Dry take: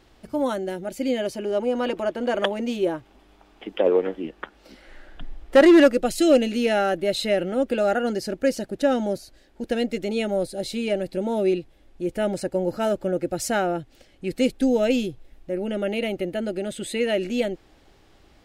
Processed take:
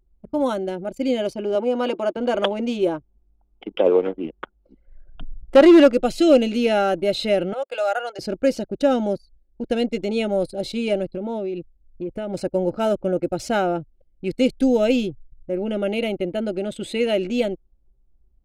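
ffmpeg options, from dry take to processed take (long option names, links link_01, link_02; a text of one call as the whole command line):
ffmpeg -i in.wav -filter_complex "[0:a]asettb=1/sr,asplit=3[link_01][link_02][link_03];[link_01]atrim=end=1.554[link_04];[link_02]atrim=start=1.55:end=2.17,asetpts=PTS-STARTPTS,afade=type=in:duration=0.004:curve=qsin,afade=type=out:start_time=0.616:duration=0.004:curve=qsin,highpass=180[link_05];[link_03]atrim=start=2.166[link_06];[link_04][link_05]acrossfade=duration=0.004:curve1=hsin:curve2=qsin[link_07];[link_07][link_06]acrossfade=duration=0.004:curve1=qsin:curve2=hsin,asettb=1/sr,asplit=3[link_08][link_09][link_10];[link_08]atrim=end=7.534[link_11];[link_09]atrim=start=7.53:end=8.19,asetpts=PTS-STARTPTS,afade=type=in:duration=0.004:curve=qsin,afade=type=out:start_time=0.656:duration=0.004:curve=qsin,highpass=frequency=610:width=0.5412,highpass=frequency=610:width=1.3066[link_12];[link_10]atrim=start=8.186[link_13];[link_11][link_12]acrossfade=duration=0.004:curve1=hsin:curve2=qsin[link_14];[link_14][link_13]acrossfade=duration=0.004:curve1=qsin:curve2=hsin,asplit=3[link_15][link_16][link_17];[link_15]afade=type=out:start_time=11.06:duration=0.02[link_18];[link_16]acompressor=threshold=-26dB:ratio=8:attack=3.2:release=140:knee=1:detection=peak,afade=type=in:start_time=11.06:duration=0.02,afade=type=out:start_time=12.33:duration=0.02[link_19];[link_17]afade=type=in:start_time=12.33:duration=0.02[link_20];[link_18][link_19][link_20]amix=inputs=3:normalize=0,anlmdn=1,acrossover=split=5100[link_21][link_22];[link_22]acompressor=threshold=-45dB:ratio=4:attack=1:release=60[link_23];[link_21][link_23]amix=inputs=2:normalize=0,equalizer=frequency=1800:width_type=o:width=0.2:gain=-12,volume=2.5dB" out.wav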